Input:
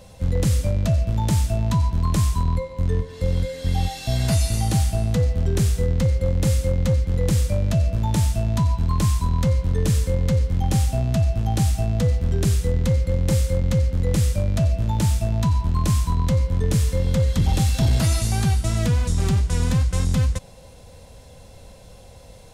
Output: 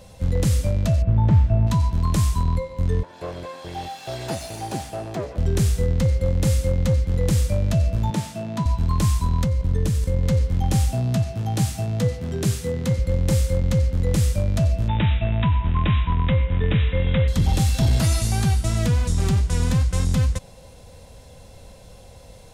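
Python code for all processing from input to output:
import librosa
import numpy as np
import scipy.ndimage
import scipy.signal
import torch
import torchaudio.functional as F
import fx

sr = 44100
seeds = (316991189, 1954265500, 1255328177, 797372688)

y = fx.chain(x, sr, fx.lowpass(hz=1800.0, slope=12),
    fx.peak_eq(hz=100.0, db=5.5, octaves=1.6), at=(1.02, 1.67))
y = fx.chain(y, sr, fx.lower_of_two(delay_ms=1.2),
    fx.highpass(hz=380.0, slope=12),
    fx.tilt_eq(slope=-2.5), at=(3.03, 5.38))
y = fx.chain(y, sr, fx.highpass(hz=150.0, slope=24),
    fx.high_shelf(hz=5400.0, db=-9.0), at=(8.1, 8.66))
y = fx.chain(y, sr, fx.low_shelf(hz=340.0, db=4.0),
    fx.level_steps(step_db=10), at=(9.44, 10.23))
y = fx.chain(y, sr, fx.highpass(hz=98.0, slope=24),
    fx.doubler(ms=16.0, db=-12.0), at=(10.93, 12.99))
y = fx.chain(y, sr, fx.brickwall_lowpass(high_hz=3900.0),
    fx.peak_eq(hz=2300.0, db=9.5, octaves=1.4), at=(14.88, 17.28))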